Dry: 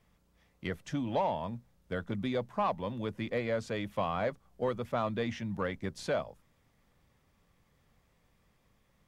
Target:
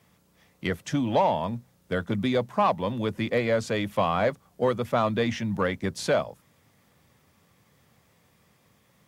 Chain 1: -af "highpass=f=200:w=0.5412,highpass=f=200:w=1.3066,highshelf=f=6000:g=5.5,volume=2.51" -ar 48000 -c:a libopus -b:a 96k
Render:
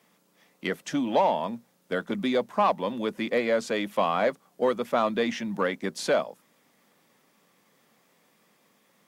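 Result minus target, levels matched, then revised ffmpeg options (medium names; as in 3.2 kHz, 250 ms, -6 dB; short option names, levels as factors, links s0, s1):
125 Hz band -10.0 dB
-af "highpass=f=82:w=0.5412,highpass=f=82:w=1.3066,highshelf=f=6000:g=5.5,volume=2.51" -ar 48000 -c:a libopus -b:a 96k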